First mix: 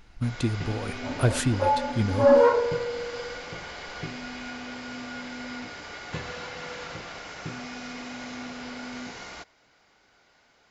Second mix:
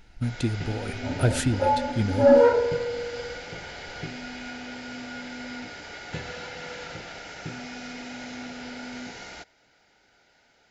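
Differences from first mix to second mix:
second sound: add low-shelf EQ 190 Hz +10 dB
master: add Butterworth band-reject 1,100 Hz, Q 4.4

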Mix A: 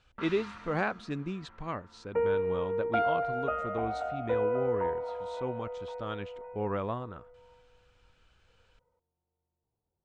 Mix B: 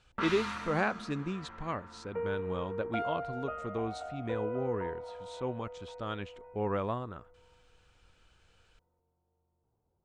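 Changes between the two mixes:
first sound +7.5 dB
second sound −7.5 dB
master: remove high-frequency loss of the air 57 metres

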